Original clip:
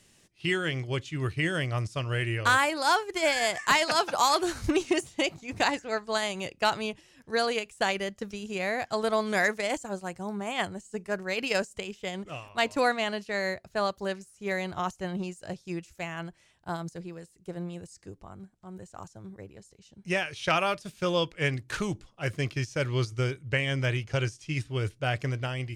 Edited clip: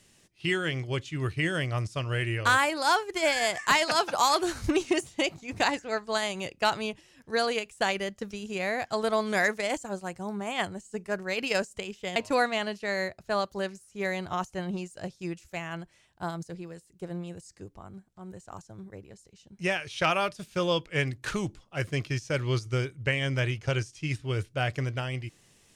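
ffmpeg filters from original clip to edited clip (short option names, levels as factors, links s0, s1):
-filter_complex "[0:a]asplit=2[s0][s1];[s0]atrim=end=12.162[s2];[s1]atrim=start=12.618[s3];[s2][s3]acrossfade=d=0.004:c1=hsin:c2=hsin"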